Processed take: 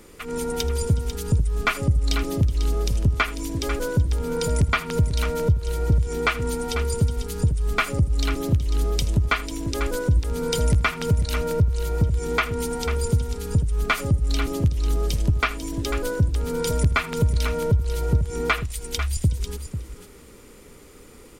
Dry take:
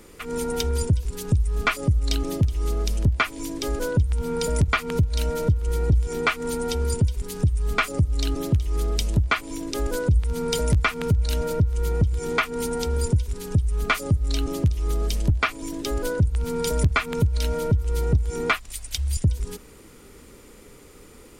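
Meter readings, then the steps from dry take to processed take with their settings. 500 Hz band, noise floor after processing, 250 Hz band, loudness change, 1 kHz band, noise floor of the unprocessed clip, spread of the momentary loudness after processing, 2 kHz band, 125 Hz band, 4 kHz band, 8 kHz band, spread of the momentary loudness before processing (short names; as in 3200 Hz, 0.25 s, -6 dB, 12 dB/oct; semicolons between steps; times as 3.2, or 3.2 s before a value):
+0.5 dB, -46 dBFS, +0.5 dB, +0.5 dB, +0.5 dB, -47 dBFS, 5 LU, +0.5 dB, +0.5 dB, +0.5 dB, +0.5 dB, 5 LU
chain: tapped delay 80/495 ms -17.5/-10 dB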